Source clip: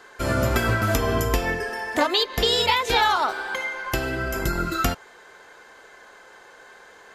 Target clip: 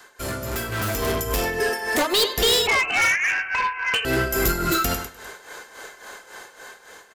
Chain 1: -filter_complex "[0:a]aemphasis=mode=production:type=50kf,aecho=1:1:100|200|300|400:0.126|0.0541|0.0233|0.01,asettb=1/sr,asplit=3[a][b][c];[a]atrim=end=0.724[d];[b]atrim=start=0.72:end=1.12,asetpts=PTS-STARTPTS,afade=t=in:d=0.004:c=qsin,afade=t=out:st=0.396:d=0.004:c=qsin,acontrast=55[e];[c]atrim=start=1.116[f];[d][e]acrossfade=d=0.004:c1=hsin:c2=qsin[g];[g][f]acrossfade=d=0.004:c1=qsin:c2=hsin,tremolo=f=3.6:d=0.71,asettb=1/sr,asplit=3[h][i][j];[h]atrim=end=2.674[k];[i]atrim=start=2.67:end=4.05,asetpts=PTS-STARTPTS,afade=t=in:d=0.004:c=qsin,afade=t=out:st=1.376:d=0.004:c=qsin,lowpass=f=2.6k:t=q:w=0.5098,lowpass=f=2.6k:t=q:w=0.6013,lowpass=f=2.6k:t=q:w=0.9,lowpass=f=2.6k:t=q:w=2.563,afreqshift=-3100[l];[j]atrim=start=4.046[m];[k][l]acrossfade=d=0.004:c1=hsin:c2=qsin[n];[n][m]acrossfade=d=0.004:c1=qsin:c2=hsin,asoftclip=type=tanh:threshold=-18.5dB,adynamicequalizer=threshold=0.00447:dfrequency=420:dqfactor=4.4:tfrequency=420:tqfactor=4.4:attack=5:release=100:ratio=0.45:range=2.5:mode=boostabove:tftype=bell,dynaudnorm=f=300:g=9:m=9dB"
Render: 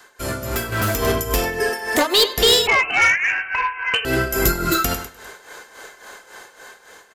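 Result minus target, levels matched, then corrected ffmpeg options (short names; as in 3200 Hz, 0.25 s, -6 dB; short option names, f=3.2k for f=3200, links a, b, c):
soft clip: distortion -5 dB
-filter_complex "[0:a]aemphasis=mode=production:type=50kf,aecho=1:1:100|200|300|400:0.126|0.0541|0.0233|0.01,asettb=1/sr,asplit=3[a][b][c];[a]atrim=end=0.724[d];[b]atrim=start=0.72:end=1.12,asetpts=PTS-STARTPTS,afade=t=in:d=0.004:c=qsin,afade=t=out:st=0.396:d=0.004:c=qsin,acontrast=55[e];[c]atrim=start=1.116[f];[d][e]acrossfade=d=0.004:c1=hsin:c2=qsin[g];[g][f]acrossfade=d=0.004:c1=qsin:c2=hsin,tremolo=f=3.6:d=0.71,asettb=1/sr,asplit=3[h][i][j];[h]atrim=end=2.674[k];[i]atrim=start=2.67:end=4.05,asetpts=PTS-STARTPTS,afade=t=in:d=0.004:c=qsin,afade=t=out:st=1.376:d=0.004:c=qsin,lowpass=f=2.6k:t=q:w=0.5098,lowpass=f=2.6k:t=q:w=0.6013,lowpass=f=2.6k:t=q:w=0.9,lowpass=f=2.6k:t=q:w=2.563,afreqshift=-3100[l];[j]atrim=start=4.046[m];[k][l]acrossfade=d=0.004:c1=hsin:c2=qsin[n];[n][m]acrossfade=d=0.004:c1=qsin:c2=hsin,asoftclip=type=tanh:threshold=-25.5dB,adynamicequalizer=threshold=0.00447:dfrequency=420:dqfactor=4.4:tfrequency=420:tqfactor=4.4:attack=5:release=100:ratio=0.45:range=2.5:mode=boostabove:tftype=bell,dynaudnorm=f=300:g=9:m=9dB"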